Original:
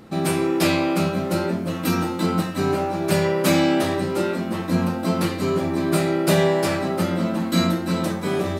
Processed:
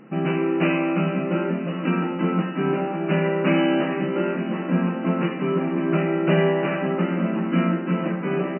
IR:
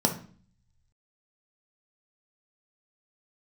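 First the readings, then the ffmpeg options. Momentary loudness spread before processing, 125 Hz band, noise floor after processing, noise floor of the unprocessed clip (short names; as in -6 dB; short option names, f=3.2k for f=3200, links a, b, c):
5 LU, -0.5 dB, -29 dBFS, -28 dBFS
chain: -af "equalizer=f=760:w=1.1:g=-3.5,aecho=1:1:455|910|1365|1820|2275|2730:0.2|0.118|0.0695|0.041|0.0242|0.0143,afftfilt=real='re*between(b*sr/4096,130,3000)':imag='im*between(b*sr/4096,130,3000)':win_size=4096:overlap=0.75"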